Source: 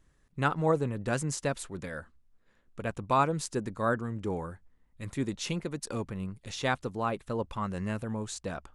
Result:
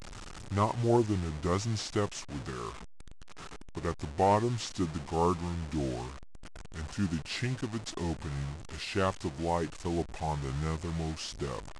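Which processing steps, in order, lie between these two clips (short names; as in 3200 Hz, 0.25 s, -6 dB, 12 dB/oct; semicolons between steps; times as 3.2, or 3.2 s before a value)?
delta modulation 64 kbps, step -38 dBFS; speed mistake 45 rpm record played at 33 rpm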